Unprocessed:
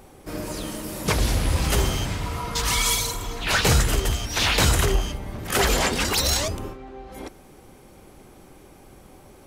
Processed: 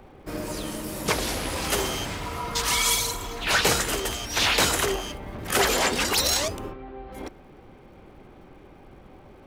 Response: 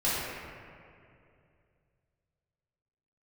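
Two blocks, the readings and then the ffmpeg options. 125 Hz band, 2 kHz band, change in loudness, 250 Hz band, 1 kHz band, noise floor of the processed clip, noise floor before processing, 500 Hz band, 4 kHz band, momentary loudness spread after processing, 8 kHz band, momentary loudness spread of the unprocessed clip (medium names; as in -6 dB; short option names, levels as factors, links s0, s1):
-10.5 dB, 0.0 dB, -1.5 dB, -3.0 dB, 0.0 dB, -50 dBFS, -49 dBFS, -0.5 dB, 0.0 dB, 17 LU, -0.5 dB, 17 LU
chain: -filter_complex "[0:a]acrossover=split=230|1200|3800[s0][s1][s2][s3];[s0]acompressor=threshold=0.0178:ratio=6[s4];[s3]aeval=exprs='sgn(val(0))*max(abs(val(0))-0.00158,0)':c=same[s5];[s4][s1][s2][s5]amix=inputs=4:normalize=0"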